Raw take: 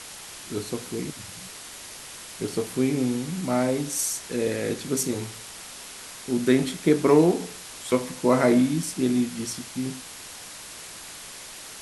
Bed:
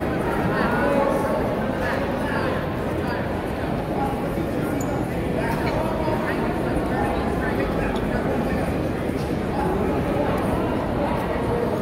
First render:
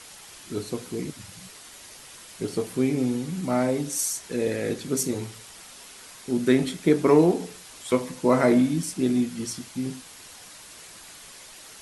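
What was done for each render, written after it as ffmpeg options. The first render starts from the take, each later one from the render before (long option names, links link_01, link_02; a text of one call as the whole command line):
ffmpeg -i in.wav -af "afftdn=noise_reduction=6:noise_floor=-41" out.wav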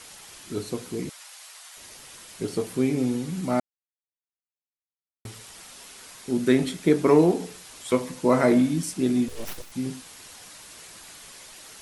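ffmpeg -i in.wav -filter_complex "[0:a]asettb=1/sr,asplit=3[link_01][link_02][link_03];[link_01]atrim=end=1.094[link_04];[link_02]atrim=start=1.09:end=1.77,asetpts=PTS-STARTPTS,afade=type=in:duration=0.004:curve=qsin,afade=type=out:start_time=0.676:duration=0.004:curve=qsin,highpass=frequency=670:width=0.5412,highpass=frequency=670:width=1.3066[link_05];[link_03]atrim=start=1.766[link_06];[link_04][link_05]acrossfade=duration=0.004:curve1=hsin:curve2=qsin[link_07];[link_07][link_06]acrossfade=duration=0.004:curve1=qsin:curve2=hsin,asettb=1/sr,asplit=3[link_08][link_09][link_10];[link_08]atrim=end=9.284[link_11];[link_09]atrim=start=9.28:end=9.72,asetpts=PTS-STARTPTS,afade=type=in:duration=0.004:curve=qsin,afade=type=out:start_time=0.436:duration=0.004:curve=qsin,aeval=exprs='abs(val(0))':channel_layout=same[link_12];[link_10]atrim=start=9.716[link_13];[link_11][link_12]acrossfade=duration=0.004:curve1=hsin:curve2=qsin[link_14];[link_14][link_13]acrossfade=duration=0.004:curve1=qsin:curve2=hsin,asplit=3[link_15][link_16][link_17];[link_15]atrim=end=3.6,asetpts=PTS-STARTPTS,afade=type=out:start_time=3.596:duration=0.004:curve=hsin[link_18];[link_16]atrim=start=3.6:end=5.25,asetpts=PTS-STARTPTS,volume=0[link_19];[link_17]atrim=start=5.25,asetpts=PTS-STARTPTS,afade=type=in:duration=0.004:curve=hsin[link_20];[link_18][link_19][link_20]concat=n=3:v=0:a=1" out.wav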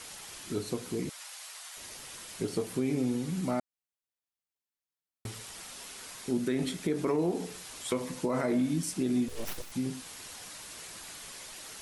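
ffmpeg -i in.wav -af "alimiter=limit=-15.5dB:level=0:latency=1:release=70,acompressor=threshold=-34dB:ratio=1.5" out.wav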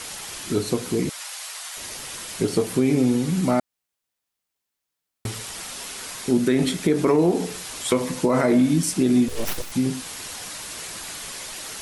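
ffmpeg -i in.wav -af "volume=10.5dB" out.wav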